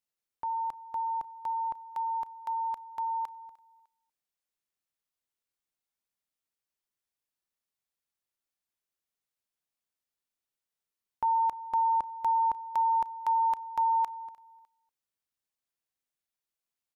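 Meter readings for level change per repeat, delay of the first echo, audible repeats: -9.0 dB, 302 ms, 2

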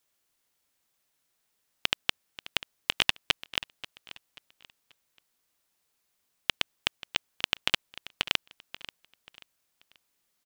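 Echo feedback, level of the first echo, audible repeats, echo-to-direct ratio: 33%, -16.5 dB, 2, -16.0 dB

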